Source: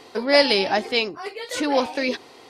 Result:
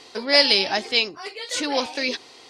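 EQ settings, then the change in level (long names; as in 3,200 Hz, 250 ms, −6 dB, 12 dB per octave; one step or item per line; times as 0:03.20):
high-frequency loss of the air 100 metres
high-shelf EQ 2,700 Hz +12 dB
high-shelf EQ 5,400 Hz +11 dB
−4.5 dB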